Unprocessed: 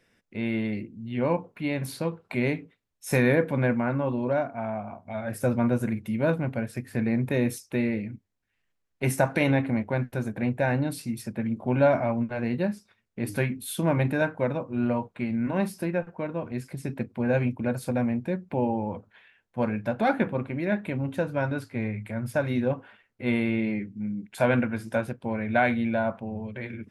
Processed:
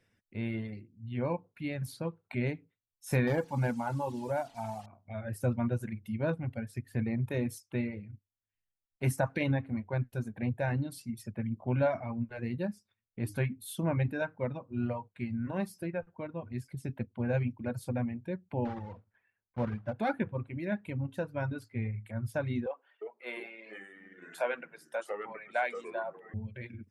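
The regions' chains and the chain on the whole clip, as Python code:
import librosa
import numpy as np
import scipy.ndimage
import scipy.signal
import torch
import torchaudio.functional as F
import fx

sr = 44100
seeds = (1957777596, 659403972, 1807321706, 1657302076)

y = fx.chain(x, sr, fx.delta_mod(bps=64000, step_db=-38.0),
    fx.peak_eq(hz=850.0, db=13.5, octaves=0.2), at=(3.27, 4.86))
y = fx.chain(y, sr, fx.block_float(bits=3),
    fx.lowpass(hz=1500.0, slope=12), at=(18.65, 19.95))
y = fx.chain(y, sr, fx.highpass(hz=440.0, slope=24),
    fx.echo_pitch(ms=352, semitones=-3, count=2, db_per_echo=-6.0), at=(22.66, 26.34))
y = fx.dereverb_blind(y, sr, rt60_s=1.5)
y = fx.peak_eq(y, sr, hz=97.0, db=10.5, octaves=0.96)
y = y * librosa.db_to_amplitude(-7.5)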